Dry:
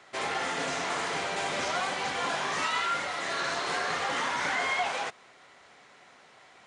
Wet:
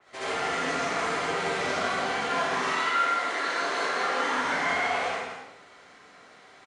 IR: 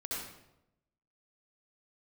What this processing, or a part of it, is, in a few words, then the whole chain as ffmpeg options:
bathroom: -filter_complex "[0:a]asettb=1/sr,asplit=3[a][b][c];[a]atrim=end=2.544[d];[b]atrim=start=2.54:end=4.37,asetpts=PTS-STARTPTS,afade=t=in:d=0.004:c=qsin,afade=t=out:st=1.826:d=0.004:c=qsin,highpass=f=230:w=0.5412,highpass=f=230:w=1.3066[e];[c]atrim=start=4.366[f];[d][e]acrossfade=d=0.004:c1=hsin:c2=qsin[g];[g][f]acrossfade=d=0.004:c1=qsin:c2=hsin,asplit=2[h][i];[i]adelay=47,volume=-11dB[j];[h][j]amix=inputs=2:normalize=0,aecho=1:1:162:0.473[k];[1:a]atrim=start_sample=2205[l];[k][l]afir=irnorm=-1:irlink=0,adynamicequalizer=threshold=0.01:dfrequency=3200:dqfactor=0.7:tfrequency=3200:tqfactor=0.7:attack=5:release=100:ratio=0.375:range=2:mode=cutabove:tftype=highshelf"

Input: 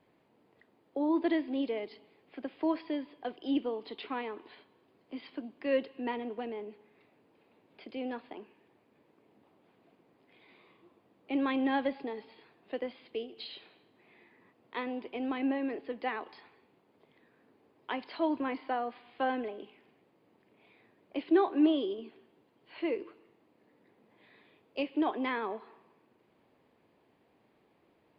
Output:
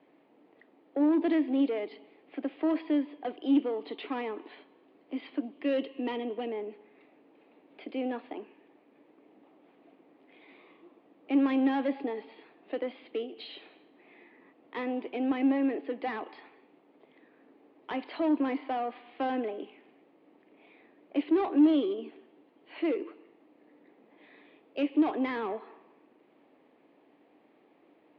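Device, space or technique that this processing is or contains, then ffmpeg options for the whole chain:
overdrive pedal into a guitar cabinet: -filter_complex "[0:a]asettb=1/sr,asplit=3[a][b][c];[a]atrim=end=5.524[d];[b]atrim=start=5.52:end=6.48,asetpts=PTS-STARTPTS,afade=t=in:d=0.004:c=qsin,afade=t=out:st=0.956:d=0.004:c=qsin,equalizer=f=800:t=o:w=0.33:g=-4,equalizer=f=1.6k:t=o:w=0.33:g=-6,equalizer=f=3.15k:t=o:w=0.33:g=7[e];[c]atrim=start=6.476[f];[d][e]acrossfade=d=0.004:c1=hsin:c2=qsin[g];[g][f]acrossfade=d=0.004:c1=qsin:c2=hsin,asplit=2[h][i];[i]highpass=f=720:p=1,volume=21dB,asoftclip=type=tanh:threshold=-16dB[j];[h][j]amix=inputs=2:normalize=0,lowpass=f=1.4k:p=1,volume=-6dB,highpass=75,equalizer=f=110:t=q:w=4:g=-9,equalizer=f=290:t=q:w=4:g=9,equalizer=f=1k:t=q:w=4:g=-5,equalizer=f=1.5k:t=q:w=4:g=-5,lowpass=f=4.2k:w=0.5412,lowpass=f=4.2k:w=1.3066,volume=-5dB"

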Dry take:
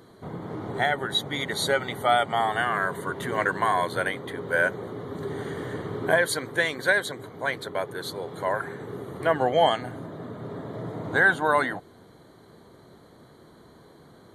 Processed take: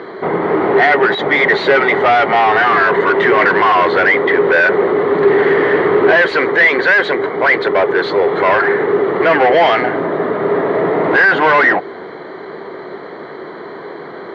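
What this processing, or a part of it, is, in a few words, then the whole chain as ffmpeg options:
overdrive pedal into a guitar cabinet: -filter_complex "[0:a]asplit=2[a][b];[b]highpass=f=720:p=1,volume=29dB,asoftclip=type=tanh:threshold=-7.5dB[c];[a][c]amix=inputs=2:normalize=0,lowpass=f=1.8k:p=1,volume=-6dB,highpass=110,equalizer=f=120:t=q:w=4:g=-7,equalizer=f=240:t=q:w=4:g=-3,equalizer=f=390:t=q:w=4:g=7,equalizer=f=2k:t=q:w=4:g=7,equalizer=f=3.6k:t=q:w=4:g=-5,lowpass=f=4.1k:w=0.5412,lowpass=f=4.1k:w=1.3066,volume=4dB"

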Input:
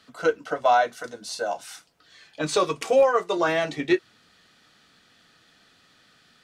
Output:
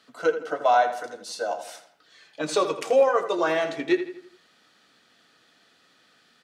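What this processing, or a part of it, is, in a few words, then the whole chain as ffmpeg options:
filter by subtraction: -filter_complex "[0:a]asplit=2[a][b];[b]lowpass=390,volume=-1[c];[a][c]amix=inputs=2:normalize=0,asplit=2[d][e];[e]adelay=82,lowpass=f=3.5k:p=1,volume=-10dB,asplit=2[f][g];[g]adelay=82,lowpass=f=3.5k:p=1,volume=0.47,asplit=2[h][i];[i]adelay=82,lowpass=f=3.5k:p=1,volume=0.47,asplit=2[j][k];[k]adelay=82,lowpass=f=3.5k:p=1,volume=0.47,asplit=2[l][m];[m]adelay=82,lowpass=f=3.5k:p=1,volume=0.47[n];[d][f][h][j][l][n]amix=inputs=6:normalize=0,volume=-2.5dB"

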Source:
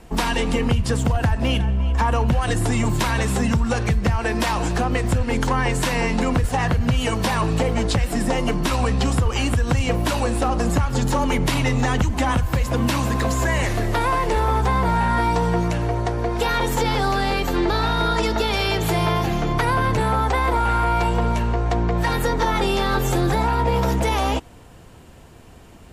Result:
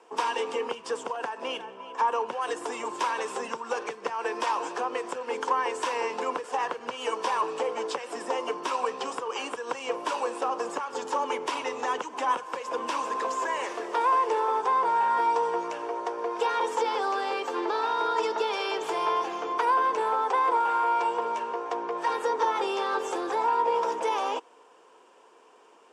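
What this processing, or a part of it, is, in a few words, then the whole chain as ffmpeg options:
phone speaker on a table: -af "highpass=f=390:w=0.5412,highpass=f=390:w=1.3066,equalizer=f=450:t=q:w=4:g=5,equalizer=f=660:t=q:w=4:g=-5,equalizer=f=1k:t=q:w=4:g=8,equalizer=f=2k:t=q:w=4:g=-6,equalizer=f=4.1k:t=q:w=4:g=-9,equalizer=f=7k:t=q:w=4:g=-4,lowpass=f=8k:w=0.5412,lowpass=f=8k:w=1.3066,volume=-6.5dB"

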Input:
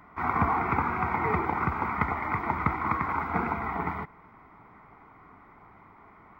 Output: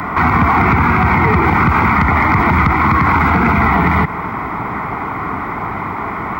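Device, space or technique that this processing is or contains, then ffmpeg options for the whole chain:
mastering chain: -filter_complex "[0:a]highpass=50,equalizer=f=540:t=o:w=0.77:g=-2,acrossover=split=250|1800[a][b][c];[a]acompressor=threshold=-34dB:ratio=4[d];[b]acompressor=threshold=-39dB:ratio=4[e];[c]acompressor=threshold=-42dB:ratio=4[f];[d][e][f]amix=inputs=3:normalize=0,acompressor=threshold=-36dB:ratio=2,asoftclip=type=tanh:threshold=-26.5dB,alimiter=level_in=35.5dB:limit=-1dB:release=50:level=0:latency=1,volume=-3.5dB"

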